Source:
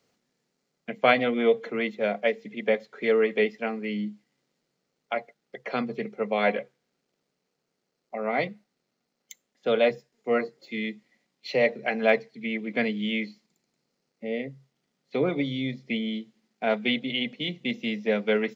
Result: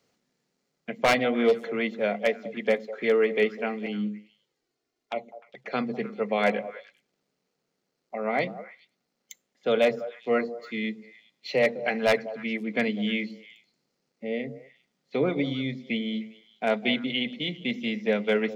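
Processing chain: 3.86–5.73 envelope flanger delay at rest 2.9 ms, full sweep at -30.5 dBFS; wavefolder -13 dBFS; delay with a stepping band-pass 0.101 s, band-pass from 220 Hz, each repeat 1.4 oct, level -9.5 dB

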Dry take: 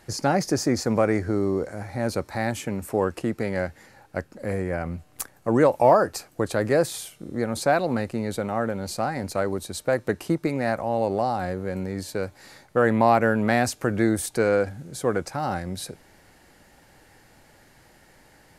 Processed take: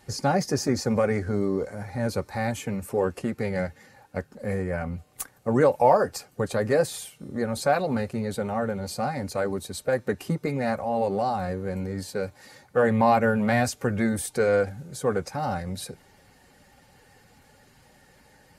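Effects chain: bin magnitudes rounded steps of 15 dB; notch comb 330 Hz

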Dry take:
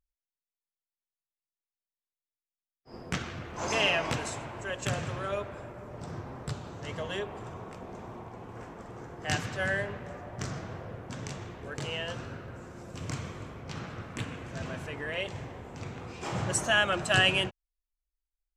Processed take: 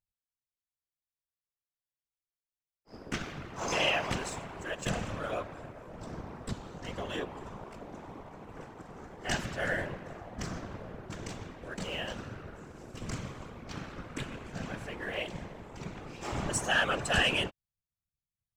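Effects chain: sample leveller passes 1; whisperiser; gain -5.5 dB

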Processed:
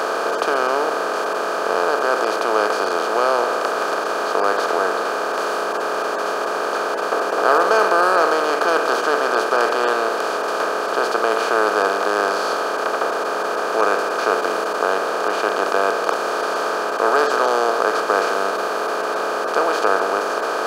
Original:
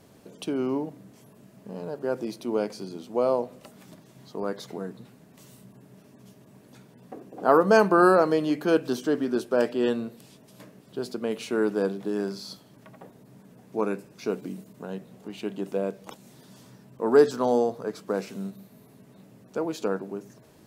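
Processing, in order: per-bin compression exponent 0.2; HPF 670 Hz 12 dB/oct; high shelf 9500 Hz -3.5 dB; gain +1 dB

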